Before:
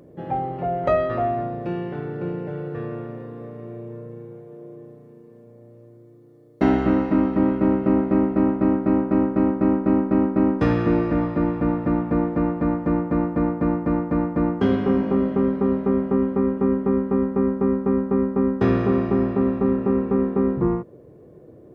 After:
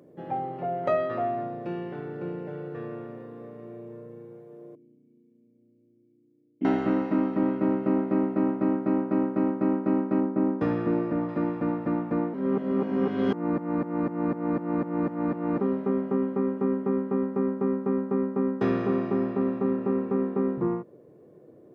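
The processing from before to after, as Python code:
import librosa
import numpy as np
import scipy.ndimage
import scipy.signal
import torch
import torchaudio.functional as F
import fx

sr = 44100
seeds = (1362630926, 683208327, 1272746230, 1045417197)

y = fx.formant_cascade(x, sr, vowel='i', at=(4.75, 6.65))
y = fx.high_shelf(y, sr, hz=2300.0, db=-11.0, at=(10.2, 11.29))
y = fx.edit(y, sr, fx.reverse_span(start_s=12.34, length_s=3.26), tone=tone)
y = scipy.signal.sosfilt(scipy.signal.butter(2, 160.0, 'highpass', fs=sr, output='sos'), y)
y = y * librosa.db_to_amplitude(-5.0)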